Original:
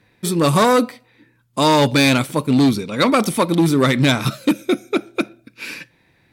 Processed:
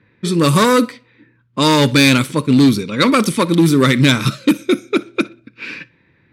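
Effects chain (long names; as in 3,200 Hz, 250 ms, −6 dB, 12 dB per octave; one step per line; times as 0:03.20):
high-pass filter 62 Hz
parametric band 730 Hz −13 dB 0.53 octaves
feedback echo with a high-pass in the loop 61 ms, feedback 27%, level −22.5 dB
low-pass that shuts in the quiet parts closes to 2,200 Hz, open at −13.5 dBFS
level +4 dB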